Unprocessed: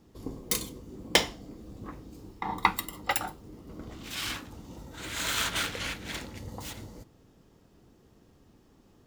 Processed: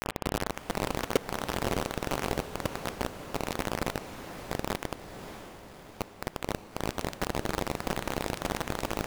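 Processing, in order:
linear delta modulator 16 kbit/s, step −21 dBFS
Butterworth low-pass 690 Hz 96 dB per octave
low-shelf EQ 65 Hz −9.5 dB
frequency shifter −88 Hz
bit reduction 4 bits
pitch vibrato 2.9 Hz 23 cents
feedback delay with all-pass diffusion 598 ms, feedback 56%, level −10 dB
spring reverb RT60 3.1 s, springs 31 ms, DRR 19.5 dB

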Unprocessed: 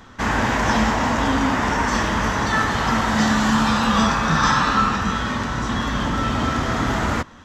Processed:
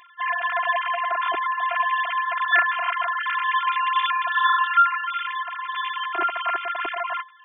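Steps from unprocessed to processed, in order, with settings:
three sine waves on the formant tracks
phases set to zero 346 Hz
level −1 dB

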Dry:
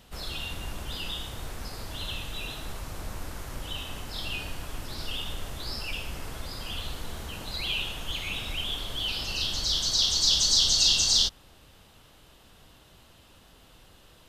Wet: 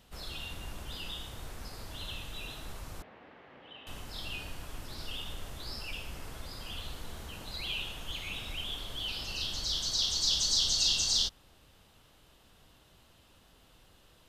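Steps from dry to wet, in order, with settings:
0:03.02–0:03.87: loudspeaker in its box 310–2,600 Hz, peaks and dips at 340 Hz −4 dB, 600 Hz −3 dB, 1,000 Hz −6 dB, 1,400 Hz −7 dB, 2,400 Hz −3 dB
level −6 dB

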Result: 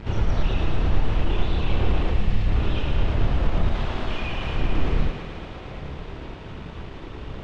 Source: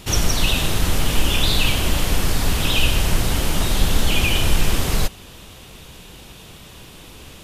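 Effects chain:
wavefolder on the positive side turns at −13.5 dBFS
0:02.11–0:02.47: time-frequency box erased 250–1,700 Hz
0:03.71–0:04.55: low-shelf EQ 420 Hz −10.5 dB
brickwall limiter −19.5 dBFS, peak gain reduction 14.5 dB
multi-voice chorus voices 4, 0.66 Hz, delay 29 ms, depth 1.6 ms
bit reduction 7 bits
head-to-tape spacing loss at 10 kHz 45 dB
on a send: feedback echo with a high-pass in the loop 111 ms, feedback 83%, high-pass 170 Hz, level −7.5 dB
on the sum: level +8.5 dB

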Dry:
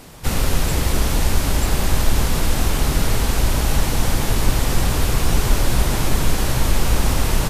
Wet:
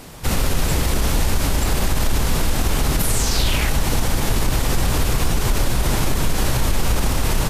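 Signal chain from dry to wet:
0:02.99–0:03.68: parametric band 13,000 Hz → 1,900 Hz +12.5 dB 0.72 octaves
brickwall limiter −11.5 dBFS, peak gain reduction 8.5 dB
level +2.5 dB

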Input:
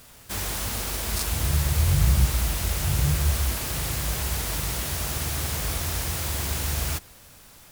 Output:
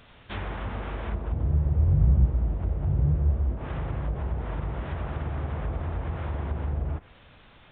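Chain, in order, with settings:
treble cut that deepens with the level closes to 520 Hz, closed at −22 dBFS
downsampling to 8,000 Hz

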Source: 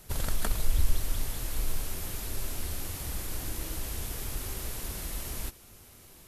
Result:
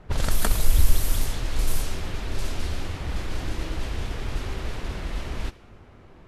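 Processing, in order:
low-pass that shuts in the quiet parts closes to 1,500 Hz, open at −21 dBFS
level +7.5 dB

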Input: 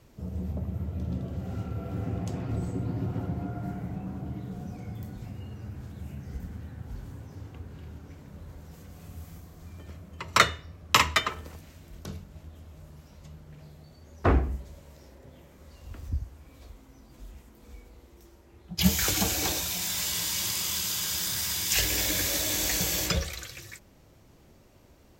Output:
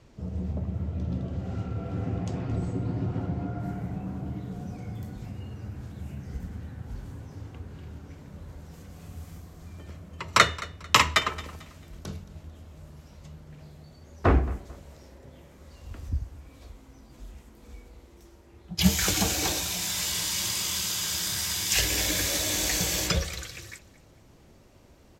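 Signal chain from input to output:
low-pass filter 7,000 Hz 12 dB per octave, from 0:03.60 12,000 Hz
repeating echo 222 ms, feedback 32%, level −19 dB
level +1.5 dB

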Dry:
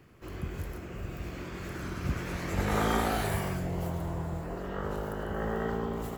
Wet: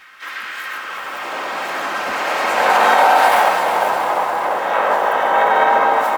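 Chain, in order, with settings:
hum removal 427.4 Hz, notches 3
in parallel at −3 dB: soft clipping −29 dBFS, distortion −11 dB
on the sum: comb filter 3.8 ms, depth 74%
repeating echo 152 ms, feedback 44%, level −18.5 dB
high-pass filter sweep 1,500 Hz → 750 Hz, 0:00.60–0:01.42
surface crackle 280 per second −55 dBFS
high-shelf EQ 4,400 Hz −8.5 dB
delay that swaps between a low-pass and a high-pass 231 ms, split 860 Hz, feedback 63%, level −10 dB
pitch-shifted copies added −4 semitones −9 dB, +3 semitones −2 dB, +12 semitones −11 dB
boost into a limiter +13 dB
feedback echo at a low word length 351 ms, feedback 55%, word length 7 bits, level −8.5 dB
level −2.5 dB

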